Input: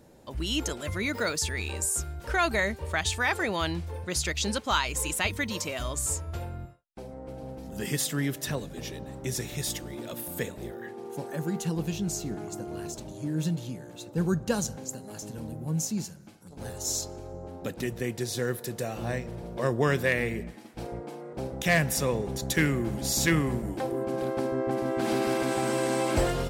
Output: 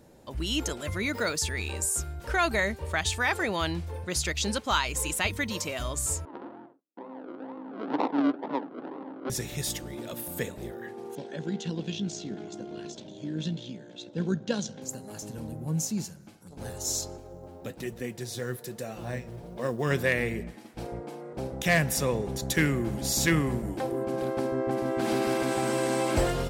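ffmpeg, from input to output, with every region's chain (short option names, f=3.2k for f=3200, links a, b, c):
-filter_complex "[0:a]asettb=1/sr,asplit=3[a][b][c];[a]atrim=end=6.254[d];[b]atrim=start=6.25:end=9.3,asetpts=PTS-STARTPTS,afade=t=in:d=0.004:c=qsin,afade=t=out:st=3.046:d=0.004:c=qsin,acrusher=samples=39:mix=1:aa=0.000001:lfo=1:lforange=23.4:lforate=2.1,adynamicsmooth=sensitivity=2:basefreq=860,highpass=f=260:w=0.5412,highpass=f=260:w=1.3066,equalizer=f=280:t=q:w=4:g=10,equalizer=f=920:t=q:w=4:g=9,equalizer=f=1.4k:t=q:w=4:g=3,equalizer=f=2.3k:t=q:w=4:g=-5,lowpass=f=4.5k:w=0.5412,lowpass=f=4.5k:w=1.3066[e];[c]atrim=start=9.296[f];[d][e]acrossfade=d=0.004:c1=hsin:c2=qsin[g];[g][f]acrossfade=d=0.004:c1=qsin:c2=hsin,asettb=1/sr,asplit=3[h][i][j];[h]atrim=end=11.154[k];[i]atrim=start=11.15:end=14.82,asetpts=PTS-STARTPTS,afade=t=in:d=0.004:c=qsin,afade=t=out:st=3.666:d=0.004:c=qsin,bandreject=f=1.2k:w=5.5,tremolo=f=59:d=0.462,highpass=170,equalizer=f=200:t=q:w=4:g=4,equalizer=f=850:t=q:w=4:g=-6,equalizer=f=3.4k:t=q:w=4:g=10,lowpass=f=6.2k:w=0.5412,lowpass=f=6.2k:w=1.3066[l];[j]atrim=start=14.816[m];[k][l]acrossfade=d=0.004:c1=hsin:c2=qsin[n];[n][m]acrossfade=d=0.004:c1=qsin:c2=hsin,asettb=1/sr,asplit=3[o][p][q];[o]atrim=end=17.174[r];[p]atrim=start=17.17:end=19.91,asetpts=PTS-STARTPTS,afade=t=in:d=0.004:c=qsin,afade=t=out:st=2.736:d=0.004:c=qsin,flanger=delay=3.4:depth=6.4:regen=54:speed=1.2:shape=triangular,acrusher=bits=8:mode=log:mix=0:aa=0.000001[s];[q]atrim=start=19.906[t];[r][s]acrossfade=d=0.004:c1=hsin:c2=qsin[u];[u][t]acrossfade=d=0.004:c1=qsin:c2=hsin"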